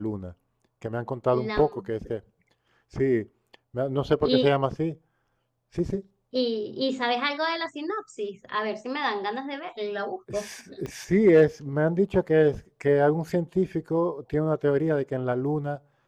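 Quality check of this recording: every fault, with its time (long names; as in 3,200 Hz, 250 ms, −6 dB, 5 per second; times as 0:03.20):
0:10.86: click −22 dBFS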